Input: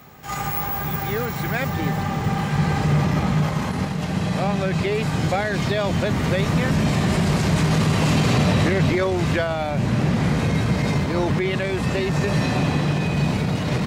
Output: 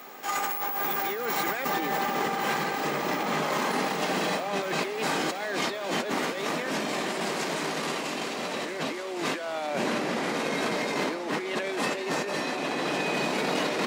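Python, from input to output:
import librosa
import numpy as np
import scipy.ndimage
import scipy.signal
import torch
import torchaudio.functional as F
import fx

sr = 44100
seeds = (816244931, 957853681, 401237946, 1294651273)

y = scipy.signal.sosfilt(scipy.signal.butter(4, 290.0, 'highpass', fs=sr, output='sos'), x)
y = fx.over_compress(y, sr, threshold_db=-30.0, ratio=-1.0)
y = fx.echo_thinned(y, sr, ms=1111, feedback_pct=58, hz=420.0, wet_db=-11)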